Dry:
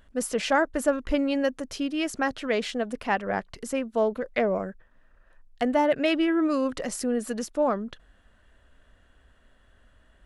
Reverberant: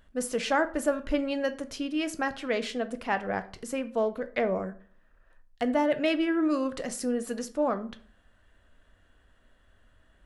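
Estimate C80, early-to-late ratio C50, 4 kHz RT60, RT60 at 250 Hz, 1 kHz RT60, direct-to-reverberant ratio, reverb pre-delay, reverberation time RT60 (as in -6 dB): 20.5 dB, 16.0 dB, 0.30 s, 0.55 s, 0.45 s, 10.0 dB, 6 ms, 0.45 s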